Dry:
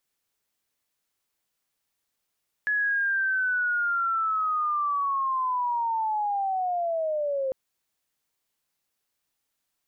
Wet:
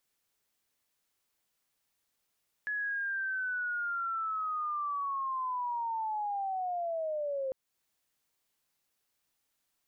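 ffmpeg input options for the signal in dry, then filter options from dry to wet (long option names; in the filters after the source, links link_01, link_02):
-f lavfi -i "aevalsrc='pow(10,(-22-2.5*t/4.85)/20)*sin(2*PI*(1700*t-1180*t*t/(2*4.85)))':duration=4.85:sample_rate=44100"
-af "alimiter=level_in=7dB:limit=-24dB:level=0:latency=1:release=318,volume=-7dB"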